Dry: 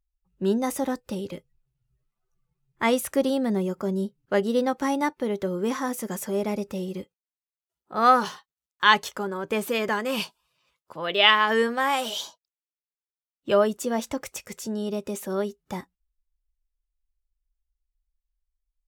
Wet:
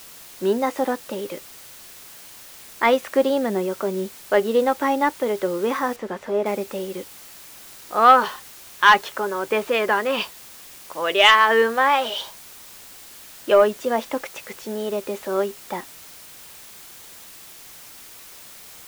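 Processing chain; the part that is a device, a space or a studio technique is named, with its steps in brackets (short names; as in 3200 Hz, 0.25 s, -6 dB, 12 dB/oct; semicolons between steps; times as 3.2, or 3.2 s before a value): tape answering machine (BPF 360–3000 Hz; soft clip -9.5 dBFS, distortion -19 dB; wow and flutter; white noise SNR 20 dB); 5.96–6.46 LPF 2200 Hz 6 dB/oct; gain +7 dB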